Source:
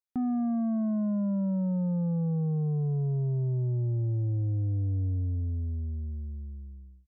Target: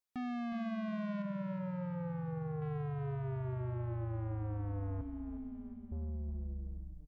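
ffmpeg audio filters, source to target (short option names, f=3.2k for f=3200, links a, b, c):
-filter_complex "[0:a]equalizer=f=130:t=o:w=0.74:g=-3,volume=32dB,asoftclip=hard,volume=-32dB,asettb=1/sr,asplit=3[a][b][c];[a]atrim=end=1.224[d];[b]atrim=start=1.22:end=2.62,asetpts=PTS-STARTPTS,afade=t=in:d=0.004:c=qsin,afade=t=out:st=1.396:d=0.004:c=qsin,asplit=2[e][f];[f]highpass=f=720:p=1,volume=8dB,asoftclip=type=tanh:threshold=-31.5dB[g];[e][g]amix=inputs=2:normalize=0,lowpass=f=1.1k:p=1,volume=-6dB[h];[c]atrim=start=2.616[i];[d][h]acrossfade=d=0.004:c1=hsin:c2=qsin[j];[j][i]acrossfade=d=0.004:c1=qsin:c2=hsin,asettb=1/sr,asplit=3[k][l][m];[k]atrim=end=5.014[n];[l]atrim=start=5.01:end=5.92,asetpts=PTS-STARTPTS,afade=t=in:d=0.004:c=qsin,afade=t=out:st=0.906:d=0.004:c=qsin,asplit=3[o][p][q];[o]bandpass=f=270:t=q:w=8,volume=0dB[r];[p]bandpass=f=2.29k:t=q:w=8,volume=-6dB[s];[q]bandpass=f=3.01k:t=q:w=8,volume=-9dB[t];[r][s][t]amix=inputs=3:normalize=0[u];[m]atrim=start=5.916[v];[n][u]acrossfade=d=0.004:c1=hsin:c2=qsin[w];[w][v]acrossfade=d=0.004:c1=qsin:c2=hsin,asoftclip=type=tanh:threshold=-39dB,asplit=2[x][y];[y]asplit=6[z][aa][ab][ac][ad][ae];[z]adelay=362,afreqshift=-35,volume=-9.5dB[af];[aa]adelay=724,afreqshift=-70,volume=-15.3dB[ag];[ab]adelay=1086,afreqshift=-105,volume=-21.2dB[ah];[ac]adelay=1448,afreqshift=-140,volume=-27dB[ai];[ad]adelay=1810,afreqshift=-175,volume=-32.9dB[aj];[ae]adelay=2172,afreqshift=-210,volume=-38.7dB[ak];[af][ag][ah][ai][aj][ak]amix=inputs=6:normalize=0[al];[x][al]amix=inputs=2:normalize=0,volume=1.5dB"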